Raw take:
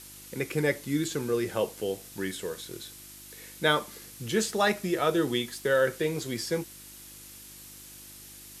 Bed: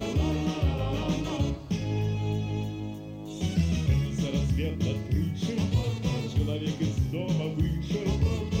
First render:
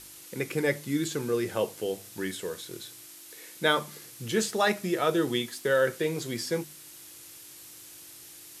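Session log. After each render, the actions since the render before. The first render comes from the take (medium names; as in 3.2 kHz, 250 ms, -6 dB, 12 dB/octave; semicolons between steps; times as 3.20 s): de-hum 50 Hz, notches 5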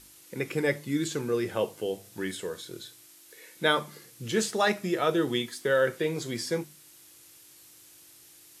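noise print and reduce 6 dB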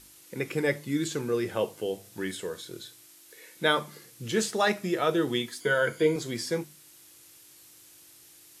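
5.60–6.16 s: rippled EQ curve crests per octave 1.8, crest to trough 13 dB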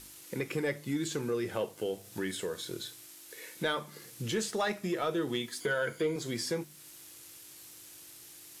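compression 2:1, threshold -39 dBFS, peak gain reduction 11.5 dB; waveshaping leveller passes 1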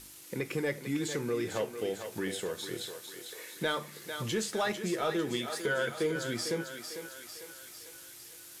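thinning echo 449 ms, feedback 60%, high-pass 440 Hz, level -7 dB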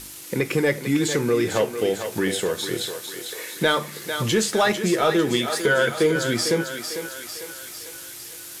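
trim +11.5 dB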